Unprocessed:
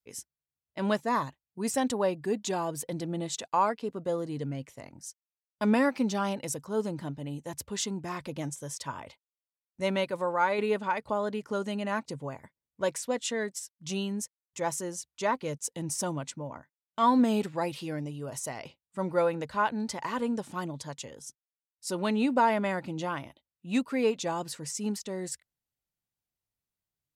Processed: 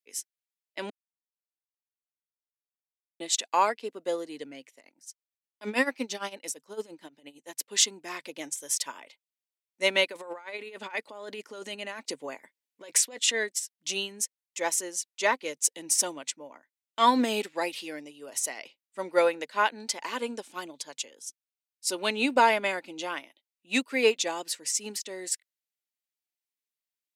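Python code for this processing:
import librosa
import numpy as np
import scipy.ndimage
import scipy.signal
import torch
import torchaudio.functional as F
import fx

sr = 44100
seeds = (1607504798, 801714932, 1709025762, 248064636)

y = fx.tremolo(x, sr, hz=8.8, depth=0.78, at=(4.69, 7.68), fade=0.02)
y = fx.high_shelf(y, sr, hz=8700.0, db=8.0, at=(8.55, 8.98))
y = fx.over_compress(y, sr, threshold_db=-35.0, ratio=-1.0, at=(10.11, 13.32), fade=0.02)
y = fx.notch(y, sr, hz=1900.0, q=12.0, at=(19.85, 23.08))
y = fx.edit(y, sr, fx.silence(start_s=0.9, length_s=2.3), tone=tone)
y = scipy.signal.sosfilt(scipy.signal.butter(4, 280.0, 'highpass', fs=sr, output='sos'), y)
y = fx.high_shelf_res(y, sr, hz=1600.0, db=6.5, q=1.5)
y = fx.upward_expand(y, sr, threshold_db=-48.0, expansion=1.5)
y = F.gain(torch.from_numpy(y), 5.0).numpy()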